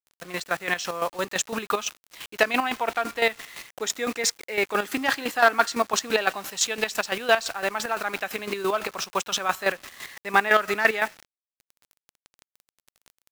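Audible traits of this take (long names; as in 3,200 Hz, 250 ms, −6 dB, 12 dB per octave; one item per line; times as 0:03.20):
a quantiser's noise floor 6 bits, dither none
chopped level 5.9 Hz, depth 65%, duty 35%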